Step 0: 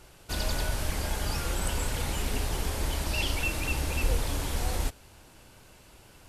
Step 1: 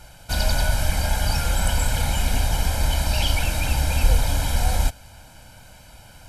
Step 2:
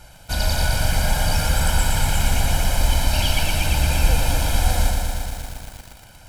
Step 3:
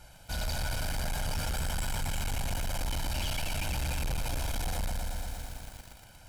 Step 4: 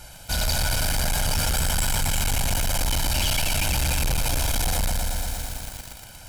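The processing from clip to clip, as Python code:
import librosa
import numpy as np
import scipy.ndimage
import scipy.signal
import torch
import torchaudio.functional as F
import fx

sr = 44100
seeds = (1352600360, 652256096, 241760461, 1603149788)

y1 = x + 0.76 * np.pad(x, (int(1.3 * sr / 1000.0), 0))[:len(x)]
y1 = F.gain(torch.from_numpy(y1), 5.0).numpy()
y2 = fx.echo_crushed(y1, sr, ms=117, feedback_pct=80, bits=7, wet_db=-4)
y3 = 10.0 ** (-20.5 / 20.0) * np.tanh(y2 / 10.0 ** (-20.5 / 20.0))
y3 = F.gain(torch.from_numpy(y3), -7.5).numpy()
y4 = fx.high_shelf(y3, sr, hz=3500.0, db=6.5)
y4 = F.gain(torch.from_numpy(y4), 8.0).numpy()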